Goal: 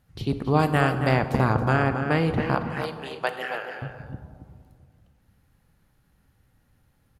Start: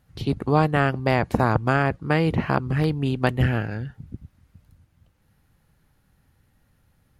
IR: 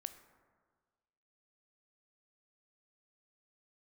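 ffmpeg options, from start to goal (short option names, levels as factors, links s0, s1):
-filter_complex "[0:a]asettb=1/sr,asplit=3[s0][s1][s2];[s0]atrim=end=0.594[s3];[s1]atrim=start=0.59:end=1.09,asetpts=PTS-STARTPTS,afade=t=in:d=0.004:c=qsin,afade=t=out:st=0.496:d=0.004:c=qsin,aemphasis=mode=production:type=50kf[s4];[s2]atrim=start=1.086[s5];[s3][s4]acrossfade=d=0.004:c1=hsin:c2=qsin[s6];[s6][s5]acrossfade=d=0.004:c1=qsin:c2=hsin,asettb=1/sr,asplit=3[s7][s8][s9];[s7]atrim=end=2.554[s10];[s8]atrim=start=2.55:end=3.82,asetpts=PTS-STARTPTS,afade=t=in:d=0.004:c=qsin,afade=t=out:st=1.266:d=0.004:c=qsin,highpass=f=490:w=0.5412,highpass=f=490:w=1.3066[s11];[s9]atrim=start=3.816[s12];[s10][s11]acrossfade=d=0.004:c1=hsin:c2=qsin[s13];[s13][s12]acrossfade=d=0.004:c1=qsin:c2=hsin,asplit=2[s14][s15];[s15]adelay=274.1,volume=0.398,highshelf=f=4000:g=-6.17[s16];[s14][s16]amix=inputs=2:normalize=0[s17];[1:a]atrim=start_sample=2205,asetrate=29988,aresample=44100[s18];[s17][s18]afir=irnorm=-1:irlink=0"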